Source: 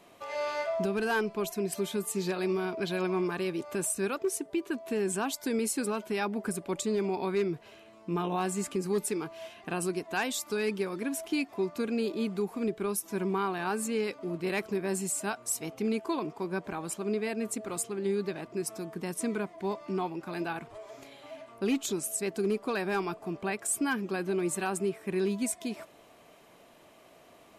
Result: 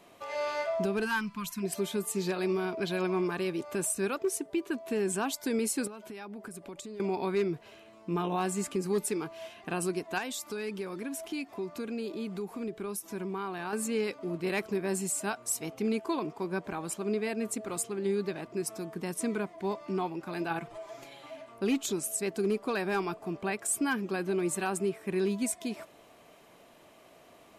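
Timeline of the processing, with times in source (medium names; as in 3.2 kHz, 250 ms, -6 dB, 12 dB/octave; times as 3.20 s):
1.05–1.63 s: time-frequency box 290–880 Hz -22 dB
5.87–7.00 s: compression 12:1, threshold -39 dBFS
10.18–13.73 s: compression 2:1, threshold -36 dBFS
20.50–21.30 s: comb 5.9 ms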